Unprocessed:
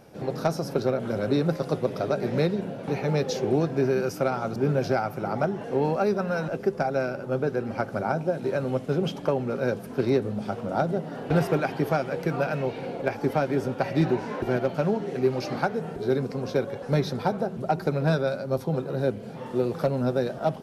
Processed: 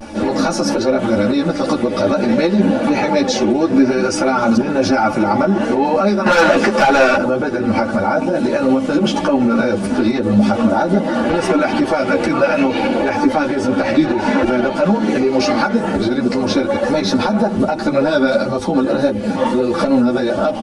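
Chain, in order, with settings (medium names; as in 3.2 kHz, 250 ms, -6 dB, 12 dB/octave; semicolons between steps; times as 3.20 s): compression, threshold -26 dBFS, peak gain reduction 9 dB; band-stop 540 Hz, Q 12; resampled via 22.05 kHz; vibrato 0.48 Hz 38 cents; comb 3.5 ms, depth 89%; 6.26–7.17 s: overdrive pedal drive 21 dB, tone 6.3 kHz, clips at -17 dBFS; loudness maximiser +24 dB; three-phase chorus; trim -2.5 dB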